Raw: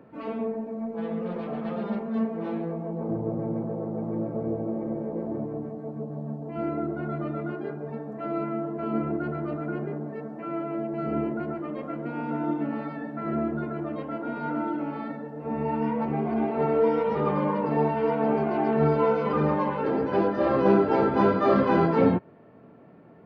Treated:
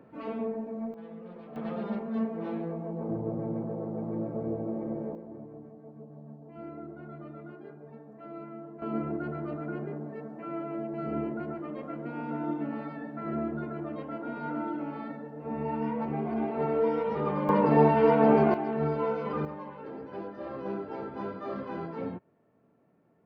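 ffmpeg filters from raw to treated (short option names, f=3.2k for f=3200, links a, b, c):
-af "asetnsamples=n=441:p=0,asendcmd='0.94 volume volume -13.5dB;1.56 volume volume -3.5dB;5.15 volume volume -13dB;8.82 volume volume -4.5dB;17.49 volume volume 3.5dB;18.54 volume volume -7dB;19.45 volume volume -15.5dB',volume=-3dB"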